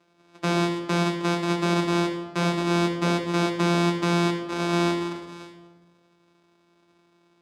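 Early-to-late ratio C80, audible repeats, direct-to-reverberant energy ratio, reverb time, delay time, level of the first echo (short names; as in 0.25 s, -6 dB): 8.5 dB, none, -2.0 dB, 1.4 s, none, none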